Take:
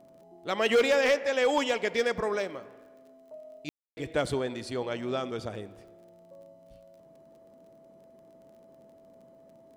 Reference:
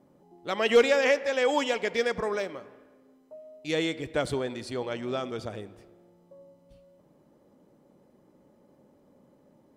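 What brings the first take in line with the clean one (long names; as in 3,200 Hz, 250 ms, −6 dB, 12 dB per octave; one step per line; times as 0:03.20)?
clipped peaks rebuilt −18 dBFS
click removal
notch filter 660 Hz, Q 30
ambience match 0:03.69–0:03.97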